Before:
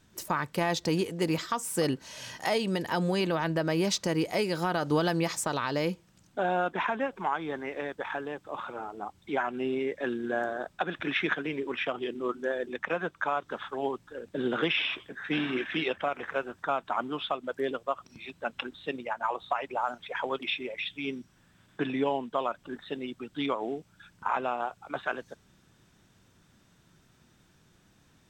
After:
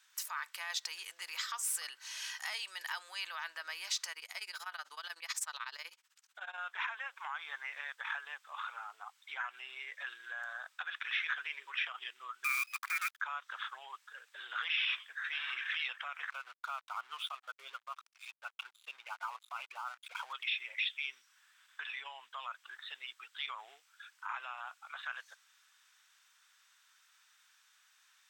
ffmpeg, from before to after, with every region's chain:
-filter_complex "[0:a]asettb=1/sr,asplit=3[a][b][c];[a]atrim=end=4.124[d];[b]atrim=start=4.12:end=6.58,asetpts=PTS-STARTPTS,afade=t=in:d=0.004:c=qsin,afade=t=out:st=2.456:d=0.004:c=qsin,equalizer=f=360:t=o:w=0.23:g=5,tremolo=f=16:d=0.93[e];[c]atrim=start=6.576[f];[d][e]acrossfade=d=0.004:c1=hsin:c2=qsin[g];[g][f]acrossfade=d=0.004:c1=qsin:c2=hsin,asettb=1/sr,asplit=3[h][i][j];[h]atrim=end=12.444[k];[i]atrim=start=12.44:end=13.2,asetpts=PTS-STARTPTS,afade=t=in:d=0.004:c=qsin,afade=t=out:st=0.756:d=0.004:c=qsin,highpass=f=480:w=0.5412,highpass=f=480:w=1.3066,lowpass=f=2.5k:t=q:w=0.5098,lowpass=f=2.5k:t=q:w=0.6013,lowpass=f=2.5k:t=q:w=0.9,lowpass=f=2.5k:t=q:w=2.563,afreqshift=-2900,acrusher=bits=7:dc=4:mix=0:aa=0.000001[l];[j]atrim=start=13.196[m];[k][l]acrossfade=d=0.004:c1=hsin:c2=qsin[n];[n][m]acrossfade=d=0.004:c1=qsin:c2=hsin,asettb=1/sr,asplit=3[o][p][q];[o]atrim=end=16.304[r];[p]atrim=start=16.3:end=20.33,asetpts=PTS-STARTPTS,afade=t=in:d=0.004:c=qsin,afade=t=out:st=4.026:d=0.004:c=qsin,asuperstop=centerf=1800:order=8:qfactor=2.9,aemphasis=mode=reproduction:type=cd,aeval=exprs='sgn(val(0))*max(abs(val(0))-0.00355,0)':c=same[s];[q]atrim=start=20.326[t];[r][s]acrossfade=d=0.004:c1=hsin:c2=qsin[u];[u][t]acrossfade=d=0.004:c1=qsin:c2=hsin,alimiter=level_in=1dB:limit=-24dB:level=0:latency=1:release=57,volume=-1dB,highpass=f=1.2k:w=0.5412,highpass=f=1.2k:w=1.3066,volume=1dB"

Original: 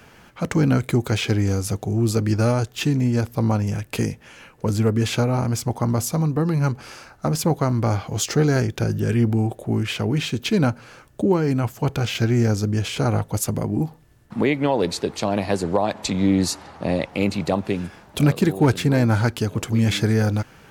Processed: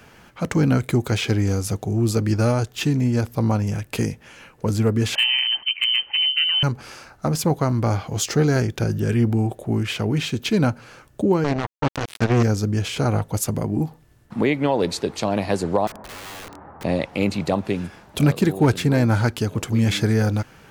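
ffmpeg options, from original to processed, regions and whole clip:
-filter_complex "[0:a]asettb=1/sr,asplit=3[a][b][c];[a]atrim=end=5.154[d];[b]atrim=start=5.15:end=6.63,asetpts=PTS-STARTPTS,afade=t=in:d=0.004:c=qsin,afade=t=out:st=1.476:d=0.004:c=qsin,lowpass=f=2.7k:t=q:w=0.5098,lowpass=f=2.7k:t=q:w=0.6013,lowpass=f=2.7k:t=q:w=0.9,lowpass=f=2.7k:t=q:w=2.563,afreqshift=-3200,asoftclip=type=hard:threshold=-10.5dB[e];[c]atrim=start=6.626[f];[d][e]acrossfade=d=0.004:c1=hsin:c2=qsin[g];[g][f]acrossfade=d=0.004:c1=qsin:c2=hsin,asettb=1/sr,asplit=3[h][i][j];[h]atrim=end=11.444[k];[i]atrim=start=11.44:end=12.43,asetpts=PTS-STARTPTS,afade=t=in:d=0.004:c=qsin,afade=t=out:st=0.986:d=0.004:c=qsin,lowpass=f=5.9k:w=0.5412,lowpass=f=5.9k:w=1.3066,acrusher=bits=2:mix=0:aa=0.5[l];[j]atrim=start=12.426[m];[k][l]acrossfade=d=0.004:c1=hsin:c2=qsin[n];[n][m]acrossfade=d=0.004:c1=qsin:c2=hsin,asettb=1/sr,asplit=3[o][p][q];[o]atrim=end=15.874[r];[p]atrim=start=15.87:end=16.84,asetpts=PTS-STARTPTS,afade=t=in:d=0.004:c=qsin,afade=t=out:st=0.966:d=0.004:c=qsin,lowpass=f=1.5k:w=0.5412,lowpass=f=1.5k:w=1.3066,acompressor=threshold=-23dB:ratio=4:attack=3.2:release=140:knee=1:detection=peak,aeval=exprs='(mod(39.8*val(0)+1,2)-1)/39.8':c=same[s];[q]atrim=start=16.836[t];[r][s]acrossfade=d=0.004:c1=hsin:c2=qsin[u];[u][t]acrossfade=d=0.004:c1=qsin:c2=hsin"

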